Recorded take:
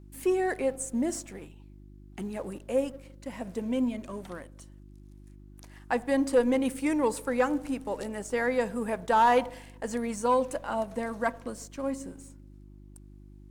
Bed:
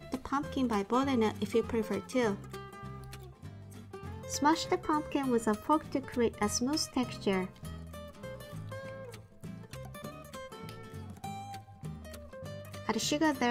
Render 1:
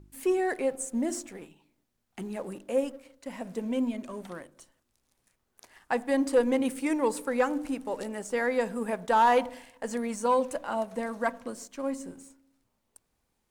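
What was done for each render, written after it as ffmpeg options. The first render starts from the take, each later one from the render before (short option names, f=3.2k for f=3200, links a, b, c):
-af "bandreject=f=50:t=h:w=4,bandreject=f=100:t=h:w=4,bandreject=f=150:t=h:w=4,bandreject=f=200:t=h:w=4,bandreject=f=250:t=h:w=4,bandreject=f=300:t=h:w=4,bandreject=f=350:t=h:w=4"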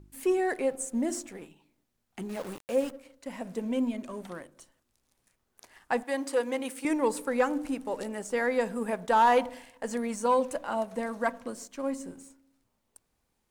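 -filter_complex "[0:a]asettb=1/sr,asplit=3[a][b][c];[a]atrim=end=2.294[d];[b]atrim=start=2.29:end=2.91,asetpts=PTS-STARTPTS,afade=t=in:d=0.004:c=qsin,afade=t=out:st=0.616:d=0.004:c=qsin,aeval=exprs='val(0)*gte(abs(val(0)),0.01)':c=same[e];[c]atrim=start=2.906[f];[d][e]acrossfade=d=0.004:c1=hsin:c2=qsin[g];[g][f]acrossfade=d=0.004:c1=qsin:c2=hsin,asettb=1/sr,asplit=3[h][i][j];[h]atrim=end=6.034[k];[i]atrim=start=6.03:end=6.85,asetpts=PTS-STARTPTS,afade=t=in:d=0.004:c=qsin,afade=t=out:st=0.816:d=0.004:c=qsin,highpass=f=660:p=1[l];[j]atrim=start=6.846[m];[k][l]acrossfade=d=0.004:c1=hsin:c2=qsin[n];[n][m]acrossfade=d=0.004:c1=qsin:c2=hsin"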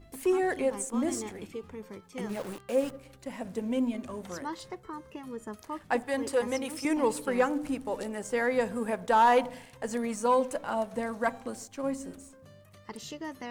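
-filter_complex "[1:a]volume=-10.5dB[a];[0:a][a]amix=inputs=2:normalize=0"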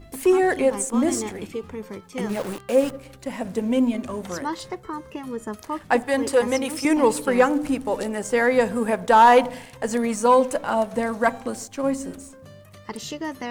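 -af "volume=8.5dB"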